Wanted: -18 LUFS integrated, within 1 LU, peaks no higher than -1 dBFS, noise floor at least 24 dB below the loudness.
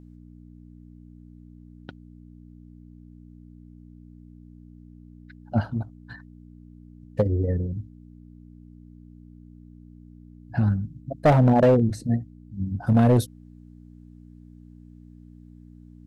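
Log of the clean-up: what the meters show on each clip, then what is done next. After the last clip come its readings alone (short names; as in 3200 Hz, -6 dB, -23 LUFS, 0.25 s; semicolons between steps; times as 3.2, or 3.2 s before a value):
clipped 0.5%; flat tops at -12.0 dBFS; hum 60 Hz; harmonics up to 300 Hz; hum level -47 dBFS; loudness -23.0 LUFS; peak -12.0 dBFS; loudness target -18.0 LUFS
-> clip repair -12 dBFS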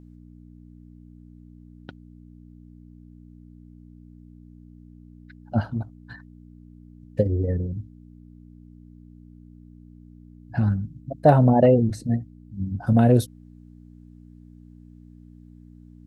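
clipped 0.0%; hum 60 Hz; harmonics up to 300 Hz; hum level -47 dBFS
-> de-hum 60 Hz, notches 5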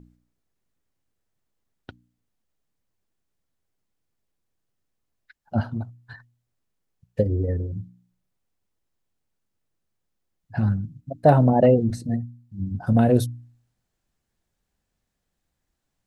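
hum none; loudness -22.5 LUFS; peak -3.5 dBFS; loudness target -18.0 LUFS
-> gain +4.5 dB; limiter -1 dBFS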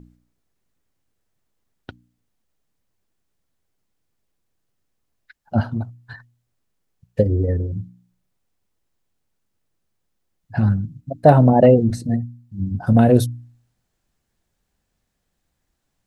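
loudness -18.0 LUFS; peak -1.0 dBFS; noise floor -74 dBFS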